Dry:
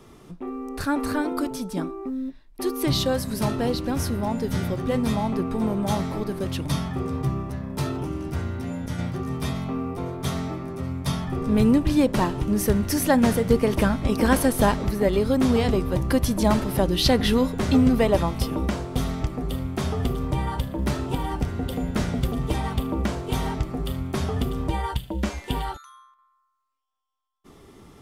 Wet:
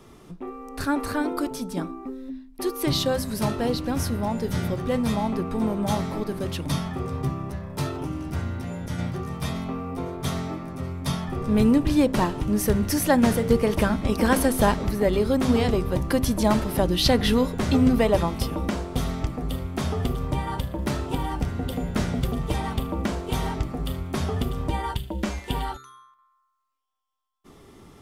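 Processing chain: de-hum 65.11 Hz, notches 7

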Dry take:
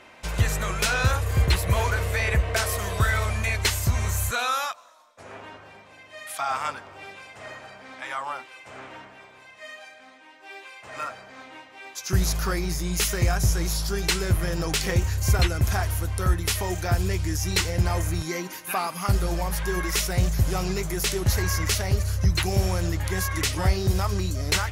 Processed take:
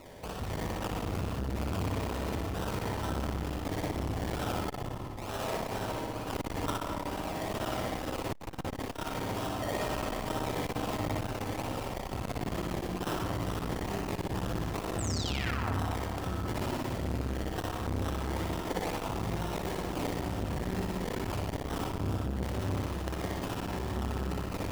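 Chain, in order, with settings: recorder AGC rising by 8.4 dB/s; high-pass 65 Hz 24 dB/octave; resonant high shelf 7 kHz +8.5 dB, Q 3; reverse; compression 16:1, threshold -32 dBFS, peak gain reduction 21.5 dB; reverse; decimation with a swept rate 27×, swing 60% 2.2 Hz; painted sound fall, 14.98–15.72 s, 650–8600 Hz -38 dBFS; flutter echo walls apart 10.3 m, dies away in 1 s; on a send at -2 dB: reverberation RT60 1.7 s, pre-delay 47 ms; on the sum: transformer saturation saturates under 420 Hz

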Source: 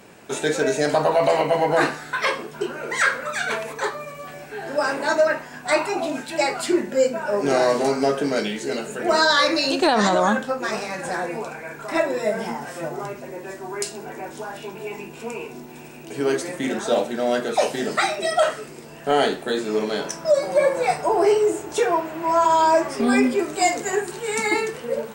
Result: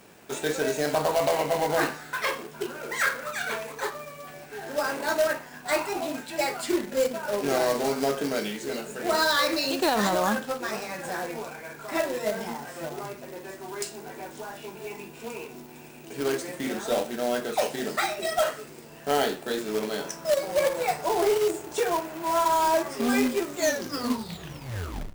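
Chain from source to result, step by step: tape stop on the ending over 1.72 s; companded quantiser 4-bit; trim -6 dB

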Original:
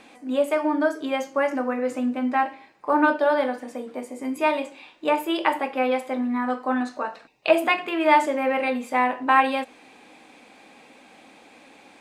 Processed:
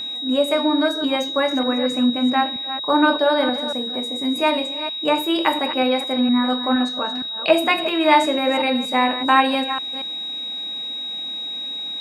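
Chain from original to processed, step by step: chunks repeated in reverse 233 ms, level -11 dB; tone controls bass +8 dB, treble +3 dB; whistle 3.8 kHz -28 dBFS; trim +2 dB

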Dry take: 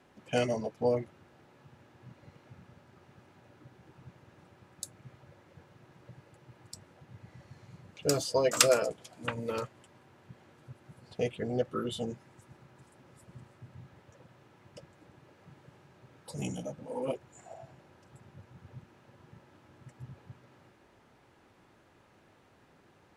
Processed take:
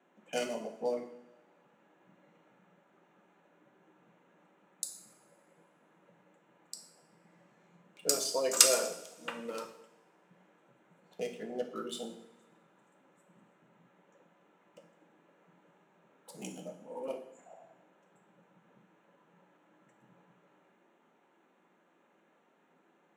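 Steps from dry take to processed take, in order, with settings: local Wiener filter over 9 samples; steep high-pass 170 Hz 48 dB/octave; tone controls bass -1 dB, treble +10 dB; hum notches 60/120/180/240/300/360 Hz; two-slope reverb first 0.66 s, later 2 s, from -21 dB, DRR 3.5 dB; trim -6 dB

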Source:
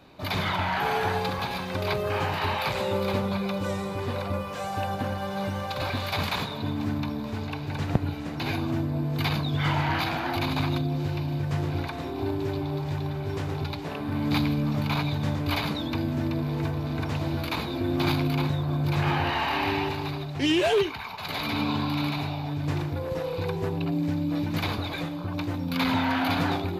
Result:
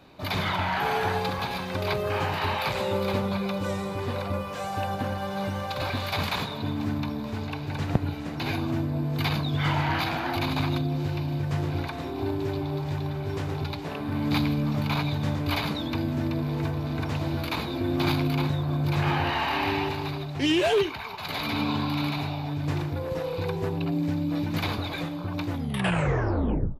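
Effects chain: tape stop on the ending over 1.31 s; speakerphone echo 330 ms, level -25 dB

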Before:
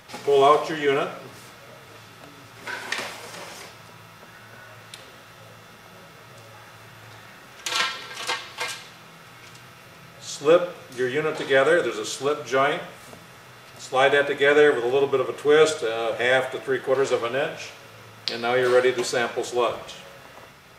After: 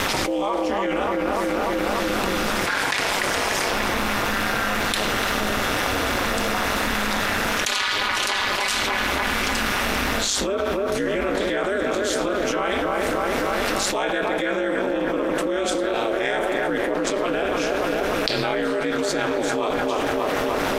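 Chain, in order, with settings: feedback echo behind a low-pass 293 ms, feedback 52%, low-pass 2.1 kHz, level -7 dB; ring modulator 100 Hz; level flattener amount 100%; trim -8 dB

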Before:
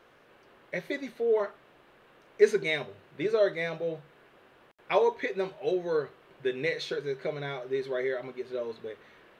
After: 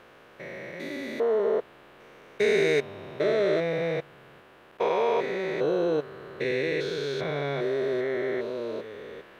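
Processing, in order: spectrogram pixelated in time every 400 ms; trim +8 dB

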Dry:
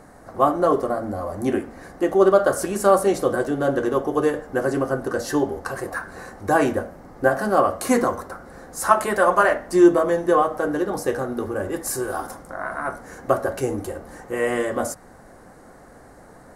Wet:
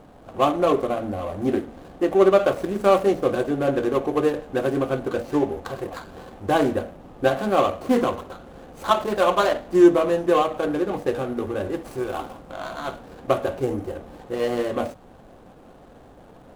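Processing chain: median filter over 25 samples

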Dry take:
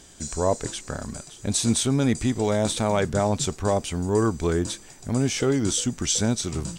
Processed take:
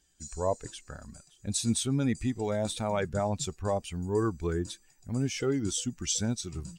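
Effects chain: expander on every frequency bin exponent 1.5; trim -4.5 dB

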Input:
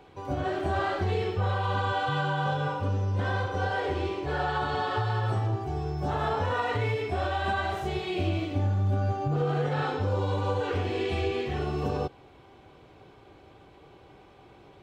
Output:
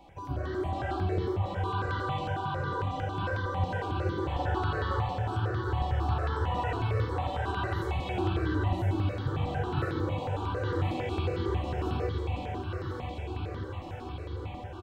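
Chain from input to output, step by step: bass shelf 110 Hz +8 dB; in parallel at +2.5 dB: compression, threshold -35 dBFS, peak gain reduction 15 dB; on the sum: doubling 16 ms -12.5 dB; echo whose repeats swap between lows and highs 513 ms, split 820 Hz, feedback 85%, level -3 dB; on a send at -3 dB: reverberation RT60 0.55 s, pre-delay 3 ms; on the sum: stepped phaser 11 Hz 410–2500 Hz; trim -8 dB

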